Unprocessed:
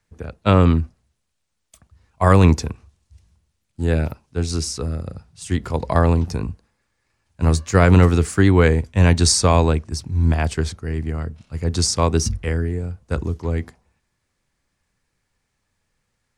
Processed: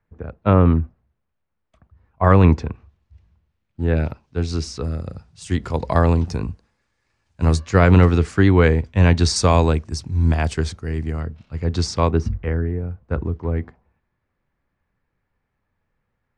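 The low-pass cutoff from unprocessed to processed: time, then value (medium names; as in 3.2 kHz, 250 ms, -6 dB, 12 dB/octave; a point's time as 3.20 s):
1.6 kHz
from 2.24 s 2.5 kHz
from 3.97 s 4.4 kHz
from 4.84 s 7.1 kHz
from 7.60 s 4.3 kHz
from 9.36 s 8.1 kHz
from 11.21 s 3.9 kHz
from 12.11 s 1.8 kHz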